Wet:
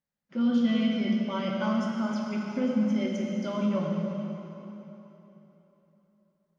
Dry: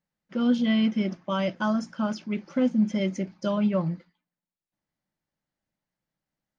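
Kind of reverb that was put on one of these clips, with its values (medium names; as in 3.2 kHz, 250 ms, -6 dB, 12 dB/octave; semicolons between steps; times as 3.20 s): plate-style reverb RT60 3.5 s, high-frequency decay 0.85×, DRR -2 dB; trim -6.5 dB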